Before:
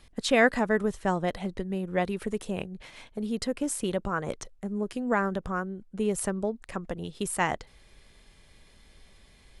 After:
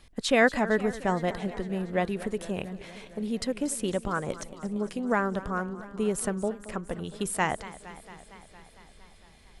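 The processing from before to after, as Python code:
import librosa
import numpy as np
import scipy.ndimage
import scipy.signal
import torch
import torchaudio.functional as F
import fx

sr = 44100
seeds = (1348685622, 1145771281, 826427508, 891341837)

y = fx.echo_warbled(x, sr, ms=229, feedback_pct=73, rate_hz=2.8, cents=157, wet_db=-16.5)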